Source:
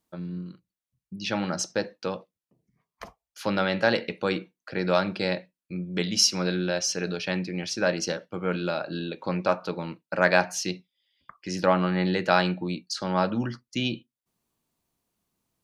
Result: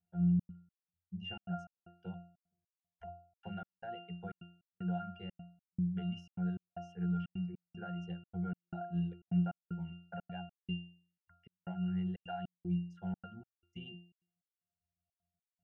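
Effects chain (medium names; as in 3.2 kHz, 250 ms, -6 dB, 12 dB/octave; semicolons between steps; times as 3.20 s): reverb removal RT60 1.7 s; compression 6:1, threshold -28 dBFS, peak gain reduction 12.5 dB; static phaser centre 1.2 kHz, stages 6; pitch-class resonator F, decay 0.46 s; trance gate "xxxx.xx..x" 153 bpm -60 dB; trim +13.5 dB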